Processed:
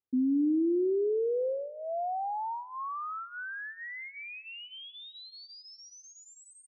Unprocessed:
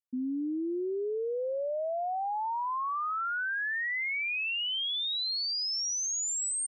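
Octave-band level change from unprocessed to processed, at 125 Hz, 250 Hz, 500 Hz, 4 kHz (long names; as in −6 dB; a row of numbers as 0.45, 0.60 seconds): can't be measured, +6.0 dB, +2.5 dB, −15.5 dB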